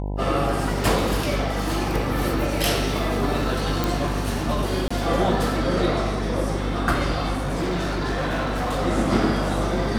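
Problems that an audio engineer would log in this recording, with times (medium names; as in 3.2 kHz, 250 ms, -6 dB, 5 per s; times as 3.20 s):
buzz 50 Hz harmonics 20 -27 dBFS
3.84 s: pop
4.88–4.91 s: dropout 25 ms
7.32–8.80 s: clipped -21 dBFS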